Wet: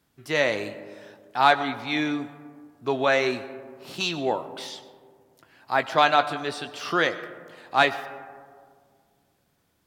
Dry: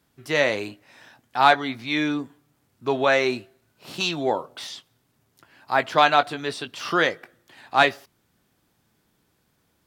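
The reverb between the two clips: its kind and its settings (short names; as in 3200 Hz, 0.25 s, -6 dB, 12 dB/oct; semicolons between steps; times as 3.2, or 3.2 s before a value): digital reverb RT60 2 s, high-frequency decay 0.3×, pre-delay 60 ms, DRR 13.5 dB; gain -2 dB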